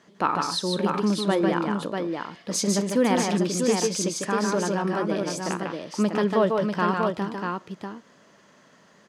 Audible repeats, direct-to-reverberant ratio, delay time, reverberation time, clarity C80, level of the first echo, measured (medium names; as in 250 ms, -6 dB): 3, no reverb, 149 ms, no reverb, no reverb, -4.0 dB